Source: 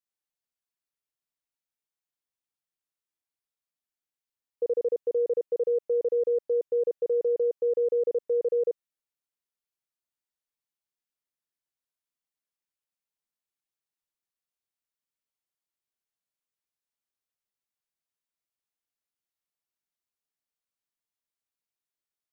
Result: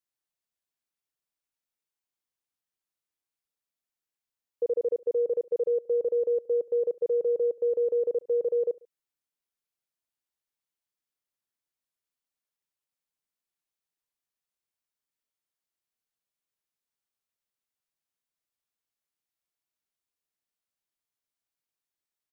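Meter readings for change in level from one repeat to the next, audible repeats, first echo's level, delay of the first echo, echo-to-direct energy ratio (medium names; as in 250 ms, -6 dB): -5.5 dB, 2, -22.5 dB, 70 ms, -21.5 dB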